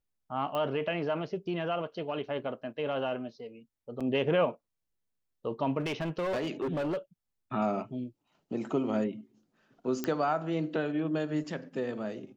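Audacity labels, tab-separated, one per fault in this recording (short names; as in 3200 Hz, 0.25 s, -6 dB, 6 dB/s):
0.550000	0.550000	pop -22 dBFS
4.000000	4.010000	gap 6.3 ms
5.800000	6.970000	clipped -28 dBFS
10.040000	10.040000	pop -17 dBFS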